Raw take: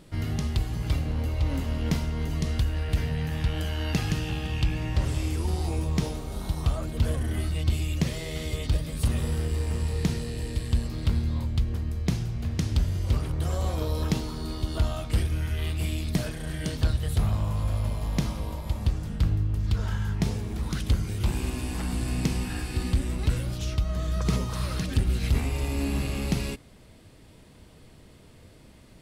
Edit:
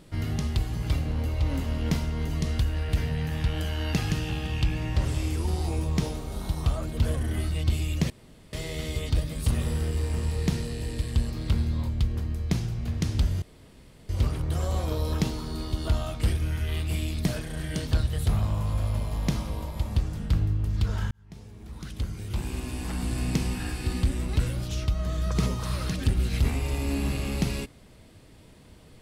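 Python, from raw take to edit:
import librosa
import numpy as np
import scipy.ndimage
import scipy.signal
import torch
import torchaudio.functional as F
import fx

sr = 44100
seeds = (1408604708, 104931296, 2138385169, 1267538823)

y = fx.edit(x, sr, fx.insert_room_tone(at_s=8.1, length_s=0.43),
    fx.insert_room_tone(at_s=12.99, length_s=0.67),
    fx.fade_in_span(start_s=20.01, length_s=2.06), tone=tone)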